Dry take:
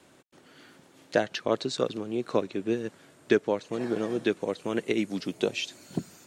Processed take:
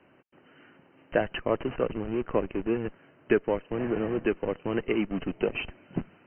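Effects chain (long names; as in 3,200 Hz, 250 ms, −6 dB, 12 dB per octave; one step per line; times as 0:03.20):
in parallel at −6 dB: comparator with hysteresis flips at −34.5 dBFS
on the sum: linear-phase brick-wall low-pass 3,100 Hz
level −1.5 dB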